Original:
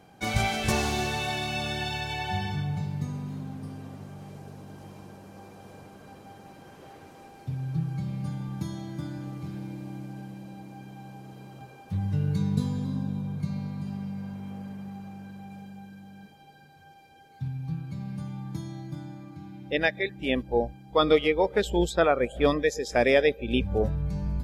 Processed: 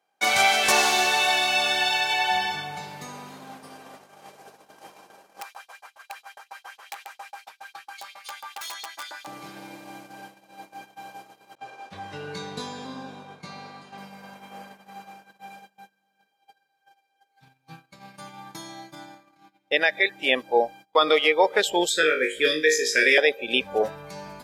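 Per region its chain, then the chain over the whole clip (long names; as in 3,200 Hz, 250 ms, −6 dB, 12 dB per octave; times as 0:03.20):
0:05.41–0:09.27: auto-filter high-pass saw up 7.3 Hz 680–4,400 Hz + wrap-around overflow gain 37.5 dB
0:11.55–0:13.98: noise gate with hold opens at −40 dBFS, closes at −43 dBFS + high-frequency loss of the air 62 metres + double-tracking delay 23 ms −6 dB
0:21.89–0:23.18: Chebyshev band-stop filter 460–1,600 Hz, order 3 + flutter between parallel walls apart 3.3 metres, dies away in 0.29 s
whole clip: high-pass filter 650 Hz 12 dB per octave; noise gate −52 dBFS, range −26 dB; boost into a limiter +17 dB; level −6.5 dB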